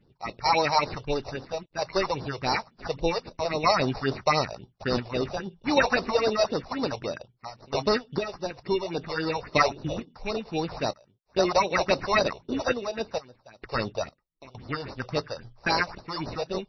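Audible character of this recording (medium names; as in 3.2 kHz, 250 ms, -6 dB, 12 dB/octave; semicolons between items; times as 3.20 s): aliases and images of a low sample rate 3.2 kHz, jitter 0%; random-step tremolo 2.2 Hz, depth 95%; phasing stages 4, 3.7 Hz, lowest notch 250–2400 Hz; MP3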